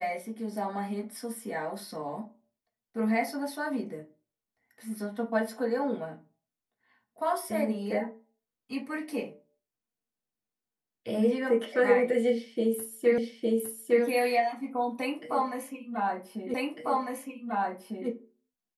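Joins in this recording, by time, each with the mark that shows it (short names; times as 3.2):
13.18 repeat of the last 0.86 s
16.54 repeat of the last 1.55 s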